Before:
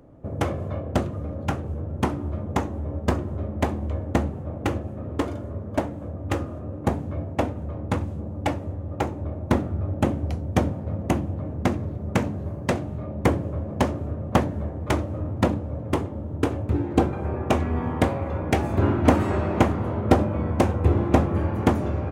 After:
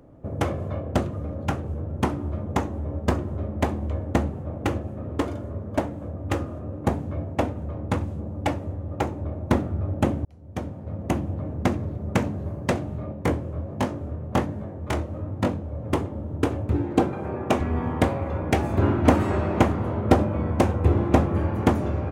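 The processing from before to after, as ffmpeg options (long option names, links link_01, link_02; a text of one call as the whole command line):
ffmpeg -i in.wav -filter_complex "[0:a]asplit=3[link_01][link_02][link_03];[link_01]afade=type=out:start_time=13.12:duration=0.02[link_04];[link_02]flanger=delay=19.5:depth=5.9:speed=1.3,afade=type=in:start_time=13.12:duration=0.02,afade=type=out:start_time=15.82:duration=0.02[link_05];[link_03]afade=type=in:start_time=15.82:duration=0.02[link_06];[link_04][link_05][link_06]amix=inputs=3:normalize=0,asettb=1/sr,asplit=3[link_07][link_08][link_09];[link_07]atrim=end=16.924[link_10];[link_08]atrim=start=16.92:end=17.61,asetpts=PTS-STARTPTS,afade=type=in:duration=0.004:curve=qsin,afade=type=out:start_time=0.686:duration=0.004:curve=qsin,highpass=120[link_11];[link_09]atrim=start=17.606[link_12];[link_10][link_11]acrossfade=duration=0.004:curve1=hsin:curve2=qsin[link_13];[link_13][link_12]acrossfade=duration=0.004:curve1=qsin:curve2=hsin,asplit=2[link_14][link_15];[link_14]atrim=end=10.25,asetpts=PTS-STARTPTS,afade=type=out:start_time=10.246:duration=0.004:curve=hsin[link_16];[link_15]atrim=start=10.25,asetpts=PTS-STARTPTS,afade=type=in:duration=1.07[link_17];[link_16][link_17]concat=n=2:v=0:a=1" out.wav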